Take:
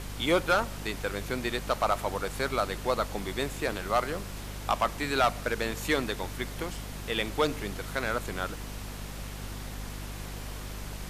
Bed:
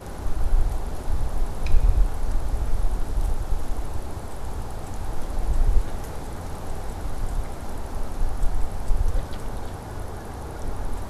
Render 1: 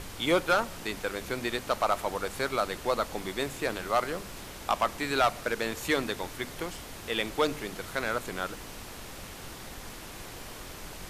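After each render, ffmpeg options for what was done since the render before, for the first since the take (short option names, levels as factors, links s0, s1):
-af "bandreject=f=50:t=h:w=6,bandreject=f=100:t=h:w=6,bandreject=f=150:t=h:w=6,bandreject=f=200:t=h:w=6,bandreject=f=250:t=h:w=6"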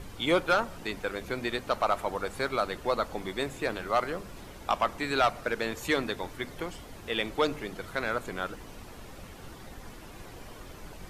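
-af "afftdn=nr=9:nf=-44"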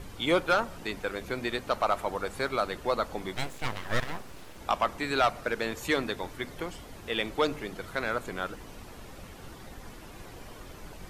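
-filter_complex "[0:a]asettb=1/sr,asplit=3[s0][s1][s2];[s0]atrim=end=3.354[s3];[s1]atrim=start=3.35:end=4.58,asetpts=PTS-STARTPTS,afade=t=in:d=0.004:c=qsin,afade=t=out:st=1.226:d=0.004:c=qsin,aeval=exprs='abs(val(0))':c=same[s4];[s2]atrim=start=4.576[s5];[s3][s4]acrossfade=d=0.004:c1=hsin:c2=qsin[s6];[s6][s5]acrossfade=d=0.004:c1=qsin:c2=hsin"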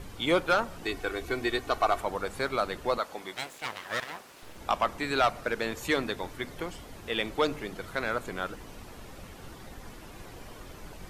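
-filter_complex "[0:a]asettb=1/sr,asplit=3[s0][s1][s2];[s0]atrim=end=0.834[s3];[s1]atrim=start=0.83:end=2.01,asetpts=PTS-STARTPTS,afade=t=in:d=0.004:c=qsin,afade=t=out:st=1.176:d=0.004:c=qsin,aecho=1:1:2.7:0.65,atrim=end_sample=52038[s4];[s2]atrim=start=2.006[s5];[s3][s4]acrossfade=d=0.004:c1=hsin:c2=qsin[s6];[s6][s5]acrossfade=d=0.004:c1=qsin:c2=hsin,asettb=1/sr,asplit=3[s7][s8][s9];[s7]atrim=end=2.984[s10];[s8]atrim=start=2.98:end=4.43,asetpts=PTS-STARTPTS,afade=t=in:d=0.004:c=qsin,afade=t=out:st=1.446:d=0.004:c=qsin,highpass=f=600:p=1[s11];[s9]atrim=start=4.426[s12];[s10][s11]acrossfade=d=0.004:c1=hsin:c2=qsin[s13];[s13][s12]acrossfade=d=0.004:c1=qsin:c2=hsin"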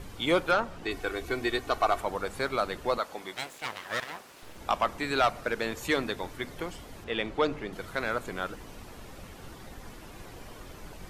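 -filter_complex "[0:a]asettb=1/sr,asplit=3[s0][s1][s2];[s0]atrim=end=0.514[s3];[s1]atrim=start=0.51:end=0.91,asetpts=PTS-STARTPTS,afade=t=in:d=0.004:c=qsin,afade=t=out:st=0.396:d=0.004:c=qsin,highshelf=f=7500:g=-12[s4];[s2]atrim=start=0.906[s5];[s3][s4]acrossfade=d=0.004:c1=hsin:c2=qsin[s6];[s6][s5]acrossfade=d=0.004:c1=qsin:c2=hsin,asettb=1/sr,asplit=3[s7][s8][s9];[s7]atrim=end=7.044[s10];[s8]atrim=start=7.04:end=7.73,asetpts=PTS-STARTPTS,afade=t=in:d=0.004:c=qsin,afade=t=out:st=0.686:d=0.004:c=qsin,aemphasis=mode=reproduction:type=50fm[s11];[s9]atrim=start=7.726[s12];[s10][s11]acrossfade=d=0.004:c1=hsin:c2=qsin[s13];[s13][s12]acrossfade=d=0.004:c1=qsin:c2=hsin"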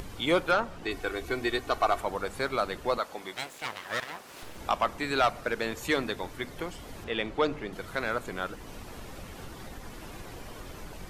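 -af "acompressor=mode=upward:threshold=0.0158:ratio=2.5"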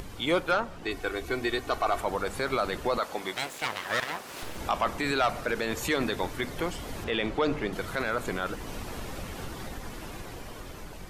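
-af "dynaudnorm=f=800:g=5:m=2,alimiter=limit=0.133:level=0:latency=1:release=14"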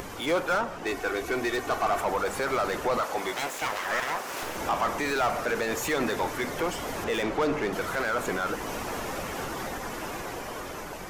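-filter_complex "[0:a]asplit=2[s0][s1];[s1]highpass=f=720:p=1,volume=8.91,asoftclip=type=tanh:threshold=0.133[s2];[s0][s2]amix=inputs=2:normalize=0,lowpass=f=1300:p=1,volume=0.501,aexciter=amount=2.7:drive=5:freq=5500"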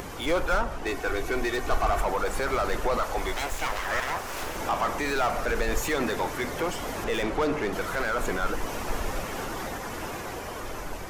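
-filter_complex "[1:a]volume=0.266[s0];[0:a][s0]amix=inputs=2:normalize=0"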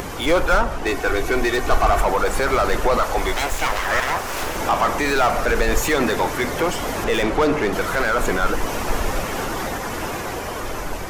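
-af "volume=2.51"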